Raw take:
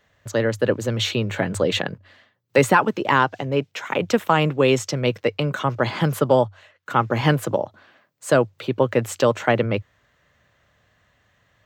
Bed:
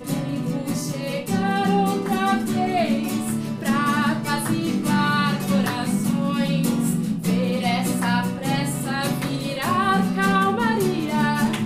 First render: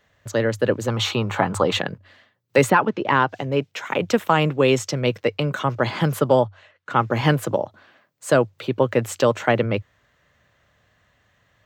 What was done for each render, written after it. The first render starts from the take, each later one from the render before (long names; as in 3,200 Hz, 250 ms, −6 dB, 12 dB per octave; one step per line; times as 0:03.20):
0:00.88–0:01.77: flat-topped bell 1,000 Hz +11.5 dB 1 octave
0:02.70–0:03.29: high-frequency loss of the air 130 metres
0:06.40–0:06.95: high-frequency loss of the air 65 metres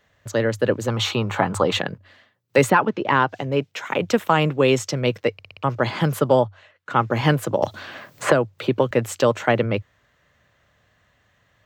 0:05.33: stutter in place 0.06 s, 5 plays
0:07.62–0:08.91: multiband upward and downward compressor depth 100%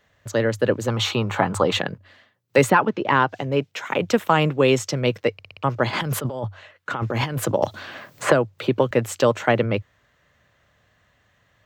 0:05.93–0:07.52: compressor whose output falls as the input rises −25 dBFS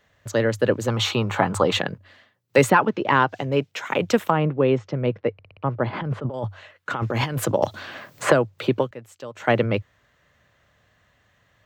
0:04.30–0:06.34: head-to-tape spacing loss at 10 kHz 40 dB
0:08.75–0:09.52: duck −18.5 dB, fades 0.18 s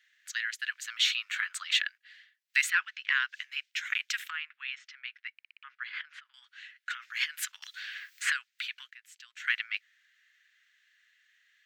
Butterworth high-pass 1,600 Hz 48 dB per octave
high-shelf EQ 6,400 Hz −7 dB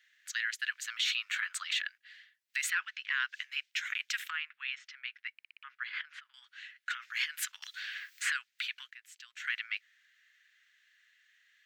brickwall limiter −21.5 dBFS, peak gain reduction 11 dB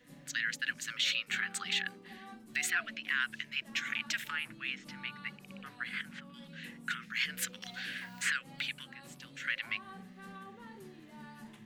mix in bed −30 dB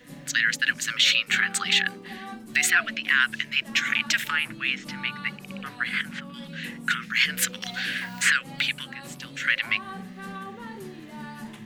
level +11.5 dB